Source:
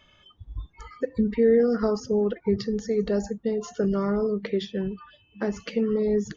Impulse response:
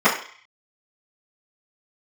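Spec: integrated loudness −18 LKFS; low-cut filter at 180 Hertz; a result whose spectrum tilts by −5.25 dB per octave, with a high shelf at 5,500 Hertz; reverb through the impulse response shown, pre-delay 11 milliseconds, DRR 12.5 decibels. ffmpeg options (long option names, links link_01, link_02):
-filter_complex "[0:a]highpass=180,highshelf=frequency=5500:gain=3.5,asplit=2[link_01][link_02];[1:a]atrim=start_sample=2205,adelay=11[link_03];[link_02][link_03]afir=irnorm=-1:irlink=0,volume=-35dB[link_04];[link_01][link_04]amix=inputs=2:normalize=0,volume=8dB"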